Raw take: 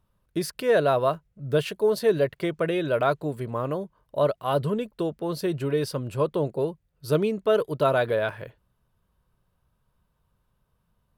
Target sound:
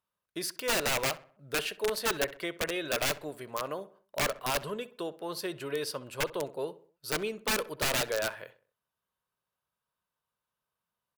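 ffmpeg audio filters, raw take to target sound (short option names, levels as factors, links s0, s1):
-filter_complex "[0:a]agate=range=0.447:threshold=0.00355:ratio=16:detection=peak,highpass=f=1100:p=1,aeval=exprs='(mod(13.3*val(0)+1,2)-1)/13.3':c=same,asplit=2[s0][s1];[s1]adelay=64,lowpass=f=2300:p=1,volume=0.15,asplit=2[s2][s3];[s3]adelay=64,lowpass=f=2300:p=1,volume=0.46,asplit=2[s4][s5];[s5]adelay=64,lowpass=f=2300:p=1,volume=0.46,asplit=2[s6][s7];[s7]adelay=64,lowpass=f=2300:p=1,volume=0.46[s8];[s0][s2][s4][s6][s8]amix=inputs=5:normalize=0"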